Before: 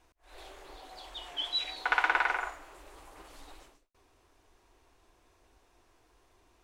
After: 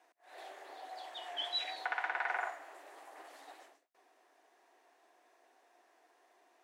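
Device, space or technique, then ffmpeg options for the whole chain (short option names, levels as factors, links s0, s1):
laptop speaker: -af "highpass=f=290:w=0.5412,highpass=f=290:w=1.3066,equalizer=f=710:t=o:w=0.51:g=10.5,equalizer=f=1800:t=o:w=0.43:g=9,alimiter=limit=0.126:level=0:latency=1:release=259,volume=0.562"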